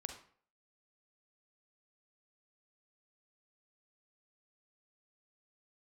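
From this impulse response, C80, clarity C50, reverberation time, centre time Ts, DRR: 11.5 dB, 7.0 dB, 0.50 s, 17 ms, 5.0 dB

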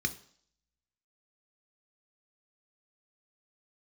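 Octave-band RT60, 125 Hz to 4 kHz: 0.50 s, 0.55 s, 0.55 s, 0.60 s, 0.55 s, 0.70 s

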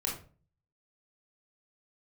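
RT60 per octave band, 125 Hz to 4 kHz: 0.70 s, 0.50 s, 0.45 s, 0.35 s, 0.30 s, 0.25 s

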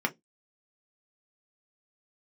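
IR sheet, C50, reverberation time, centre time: 24.0 dB, 0.15 s, 5 ms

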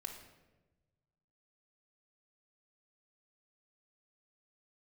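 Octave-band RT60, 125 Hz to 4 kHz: 2.0 s, 1.5 s, 1.3 s, 0.95 s, 0.90 s, 0.75 s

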